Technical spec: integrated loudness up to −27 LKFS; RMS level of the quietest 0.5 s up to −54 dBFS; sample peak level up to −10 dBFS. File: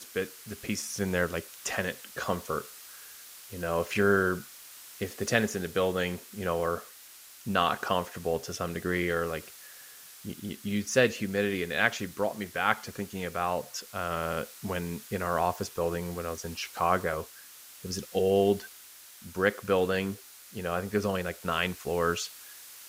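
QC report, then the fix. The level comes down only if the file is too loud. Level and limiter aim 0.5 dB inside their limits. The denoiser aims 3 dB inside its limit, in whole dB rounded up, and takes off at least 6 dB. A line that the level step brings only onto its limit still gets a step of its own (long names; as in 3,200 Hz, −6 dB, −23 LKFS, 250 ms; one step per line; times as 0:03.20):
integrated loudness −30.5 LKFS: in spec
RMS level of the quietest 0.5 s −51 dBFS: out of spec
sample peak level −7.5 dBFS: out of spec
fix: broadband denoise 6 dB, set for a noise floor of −51 dBFS
brickwall limiter −10.5 dBFS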